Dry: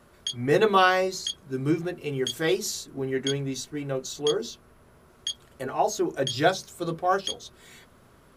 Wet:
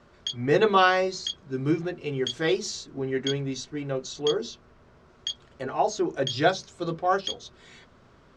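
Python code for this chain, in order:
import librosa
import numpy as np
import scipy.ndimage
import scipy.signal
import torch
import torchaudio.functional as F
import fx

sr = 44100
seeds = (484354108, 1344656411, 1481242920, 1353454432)

y = scipy.signal.sosfilt(scipy.signal.butter(4, 6300.0, 'lowpass', fs=sr, output='sos'), x)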